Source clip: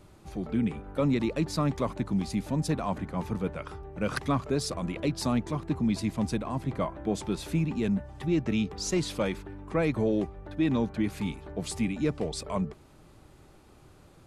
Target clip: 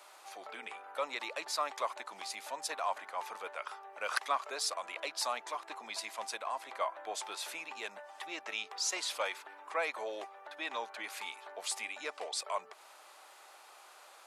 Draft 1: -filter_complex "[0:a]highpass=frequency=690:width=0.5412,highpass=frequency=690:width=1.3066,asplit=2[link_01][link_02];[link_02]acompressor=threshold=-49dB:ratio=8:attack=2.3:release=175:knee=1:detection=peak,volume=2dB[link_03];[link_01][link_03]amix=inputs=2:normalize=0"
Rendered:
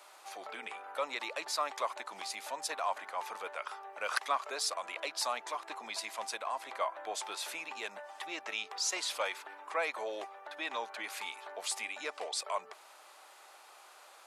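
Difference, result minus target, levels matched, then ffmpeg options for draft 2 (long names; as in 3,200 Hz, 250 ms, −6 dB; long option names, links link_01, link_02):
downward compressor: peak gain reduction −7 dB
-filter_complex "[0:a]highpass=frequency=690:width=0.5412,highpass=frequency=690:width=1.3066,asplit=2[link_01][link_02];[link_02]acompressor=threshold=-57dB:ratio=8:attack=2.3:release=175:knee=1:detection=peak,volume=2dB[link_03];[link_01][link_03]amix=inputs=2:normalize=0"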